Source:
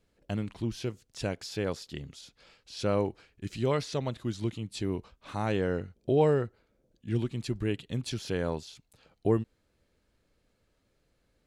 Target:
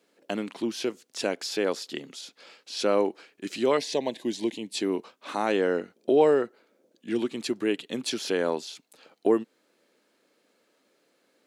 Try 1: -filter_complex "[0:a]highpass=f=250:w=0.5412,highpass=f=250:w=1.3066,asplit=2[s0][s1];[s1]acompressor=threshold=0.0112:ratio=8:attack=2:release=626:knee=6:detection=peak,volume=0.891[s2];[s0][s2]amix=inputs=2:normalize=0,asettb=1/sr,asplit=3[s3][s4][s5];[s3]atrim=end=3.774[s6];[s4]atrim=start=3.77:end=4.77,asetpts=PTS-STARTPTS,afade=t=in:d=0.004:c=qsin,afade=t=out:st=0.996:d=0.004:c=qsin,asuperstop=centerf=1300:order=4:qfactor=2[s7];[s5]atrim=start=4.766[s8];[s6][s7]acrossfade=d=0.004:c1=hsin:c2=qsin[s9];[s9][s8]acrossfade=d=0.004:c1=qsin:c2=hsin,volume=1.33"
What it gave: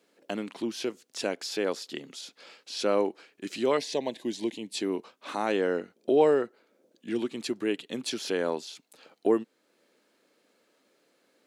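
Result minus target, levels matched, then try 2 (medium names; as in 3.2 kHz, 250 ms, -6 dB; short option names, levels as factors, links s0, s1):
compression: peak gain reduction +10 dB
-filter_complex "[0:a]highpass=f=250:w=0.5412,highpass=f=250:w=1.3066,asplit=2[s0][s1];[s1]acompressor=threshold=0.0422:ratio=8:attack=2:release=626:knee=6:detection=peak,volume=0.891[s2];[s0][s2]amix=inputs=2:normalize=0,asettb=1/sr,asplit=3[s3][s4][s5];[s3]atrim=end=3.774[s6];[s4]atrim=start=3.77:end=4.77,asetpts=PTS-STARTPTS,afade=t=in:d=0.004:c=qsin,afade=t=out:st=0.996:d=0.004:c=qsin,asuperstop=centerf=1300:order=4:qfactor=2[s7];[s5]atrim=start=4.766[s8];[s6][s7]acrossfade=d=0.004:c1=hsin:c2=qsin[s9];[s9][s8]acrossfade=d=0.004:c1=qsin:c2=hsin,volume=1.33"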